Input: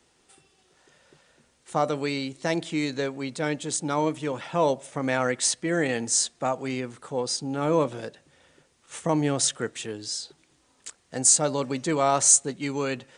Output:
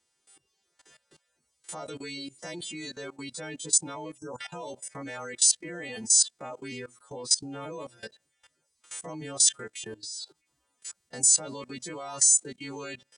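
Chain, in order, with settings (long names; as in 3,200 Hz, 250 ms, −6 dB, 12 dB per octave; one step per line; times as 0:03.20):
every partial snapped to a pitch grid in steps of 2 semitones
reverb reduction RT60 0.75 s
output level in coarse steps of 19 dB
time-frequency box erased 0:04.17–0:04.39, 1,600–5,000 Hz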